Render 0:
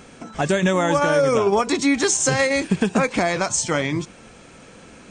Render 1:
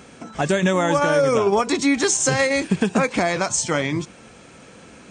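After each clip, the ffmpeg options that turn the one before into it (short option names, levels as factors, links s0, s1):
-af "highpass=55"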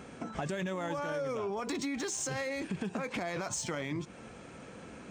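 -filter_complex "[0:a]asplit=2[s0][s1];[s1]adynamicsmooth=sensitivity=4.5:basefreq=2800,volume=0.944[s2];[s0][s2]amix=inputs=2:normalize=0,alimiter=limit=0.251:level=0:latency=1:release=16,acompressor=threshold=0.0631:ratio=6,volume=0.376"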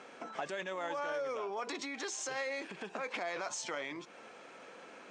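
-af "highpass=480,lowpass=5800"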